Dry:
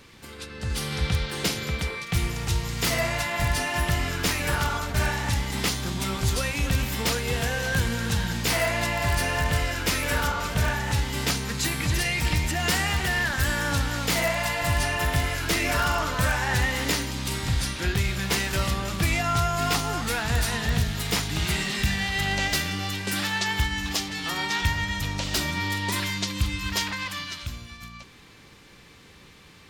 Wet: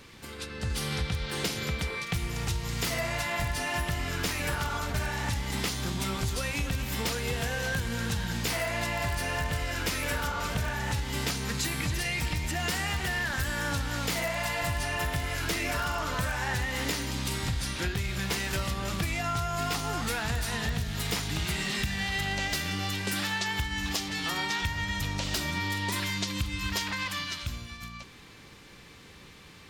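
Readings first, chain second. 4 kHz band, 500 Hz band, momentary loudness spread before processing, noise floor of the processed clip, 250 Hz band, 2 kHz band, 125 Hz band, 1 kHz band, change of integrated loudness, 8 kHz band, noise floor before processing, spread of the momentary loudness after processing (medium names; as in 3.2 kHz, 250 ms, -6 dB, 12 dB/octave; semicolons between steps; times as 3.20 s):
-4.5 dB, -5.0 dB, 5 LU, -50 dBFS, -4.5 dB, -4.5 dB, -5.5 dB, -5.0 dB, -5.0 dB, -5.0 dB, -50 dBFS, 3 LU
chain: compression, threshold -27 dBFS, peak gain reduction 9 dB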